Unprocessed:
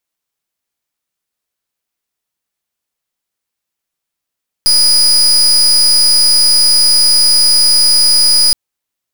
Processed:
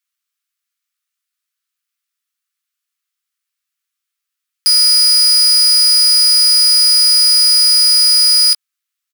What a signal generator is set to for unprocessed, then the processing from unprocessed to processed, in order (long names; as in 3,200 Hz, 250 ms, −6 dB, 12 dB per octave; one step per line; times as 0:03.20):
pulse wave 4,930 Hz, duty 34% −8.5 dBFS 3.87 s
elliptic high-pass filter 1,200 Hz, stop band 50 dB
double-tracking delay 17 ms −10 dB